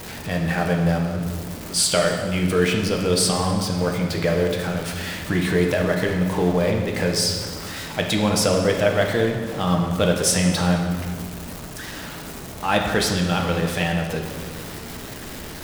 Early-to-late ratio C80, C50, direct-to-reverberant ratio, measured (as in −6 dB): 5.5 dB, 4.0 dB, 1.0 dB